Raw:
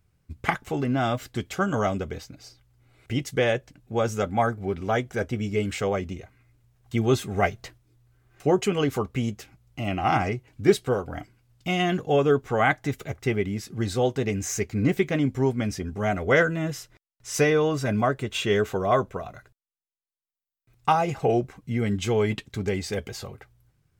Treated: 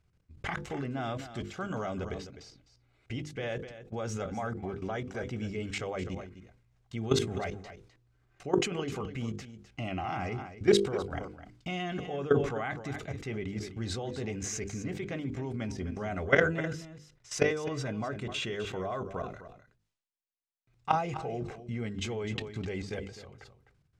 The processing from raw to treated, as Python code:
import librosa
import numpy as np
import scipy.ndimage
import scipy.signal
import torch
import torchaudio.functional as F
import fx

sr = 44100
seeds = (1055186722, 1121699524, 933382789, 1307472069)

y = fx.level_steps(x, sr, step_db=17)
y = scipy.signal.sosfilt(scipy.signal.butter(2, 6700.0, 'lowpass', fs=sr, output='sos'), y)
y = fx.hum_notches(y, sr, base_hz=50, count=10)
y = y + 10.0 ** (-13.0 / 20.0) * np.pad(y, (int(255 * sr / 1000.0), 0))[:len(y)]
y = fx.sustainer(y, sr, db_per_s=88.0)